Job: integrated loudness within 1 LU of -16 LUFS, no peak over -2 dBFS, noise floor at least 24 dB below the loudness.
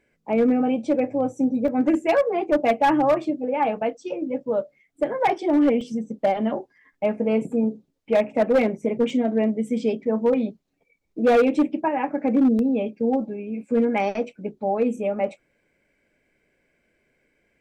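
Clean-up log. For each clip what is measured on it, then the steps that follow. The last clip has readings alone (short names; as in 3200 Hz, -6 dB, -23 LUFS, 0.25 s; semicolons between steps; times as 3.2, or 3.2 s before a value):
clipped 1.2%; flat tops at -13.0 dBFS; dropouts 4; longest dropout 1.5 ms; loudness -23.0 LUFS; peak -13.0 dBFS; loudness target -16.0 LUFS
-> clip repair -13 dBFS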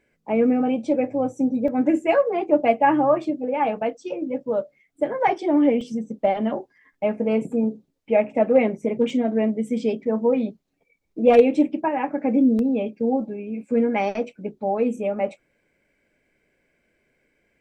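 clipped 0.0%; dropouts 4; longest dropout 1.5 ms
-> interpolate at 1.68/5.81/9.1/12.59, 1.5 ms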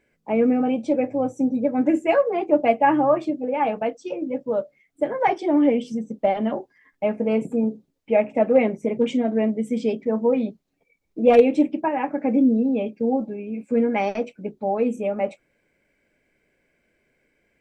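dropouts 0; loudness -22.0 LUFS; peak -4.0 dBFS; loudness target -16.0 LUFS
-> gain +6 dB; limiter -2 dBFS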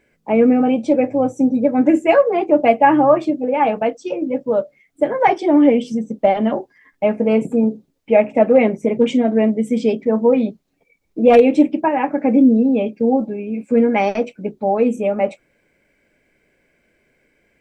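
loudness -16.5 LUFS; peak -2.0 dBFS; noise floor -64 dBFS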